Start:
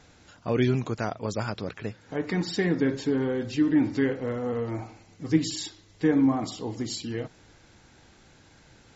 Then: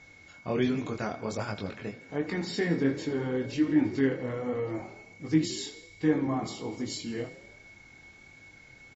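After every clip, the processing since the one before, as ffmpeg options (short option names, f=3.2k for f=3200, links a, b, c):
-filter_complex "[0:a]aeval=exprs='val(0)+0.00355*sin(2*PI*2200*n/s)':c=same,flanger=delay=19.5:depth=4.6:speed=1.3,asplit=7[a][b][c][d][e][f][g];[b]adelay=81,afreqshift=30,volume=-16dB[h];[c]adelay=162,afreqshift=60,volume=-20.3dB[i];[d]adelay=243,afreqshift=90,volume=-24.6dB[j];[e]adelay=324,afreqshift=120,volume=-28.9dB[k];[f]adelay=405,afreqshift=150,volume=-33.2dB[l];[g]adelay=486,afreqshift=180,volume=-37.5dB[m];[a][h][i][j][k][l][m]amix=inputs=7:normalize=0"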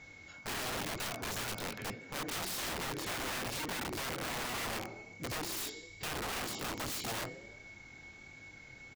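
-af "acompressor=threshold=-28dB:ratio=8,aeval=exprs='(mod(44.7*val(0)+1,2)-1)/44.7':c=same"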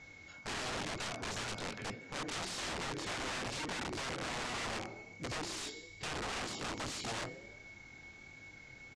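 -af "lowpass=f=8.2k:w=0.5412,lowpass=f=8.2k:w=1.3066,volume=-1dB"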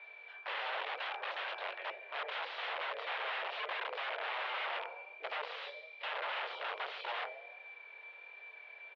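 -af "highpass=f=380:t=q:w=0.5412,highpass=f=380:t=q:w=1.307,lowpass=f=3.3k:t=q:w=0.5176,lowpass=f=3.3k:t=q:w=0.7071,lowpass=f=3.3k:t=q:w=1.932,afreqshift=140,volume=2.5dB"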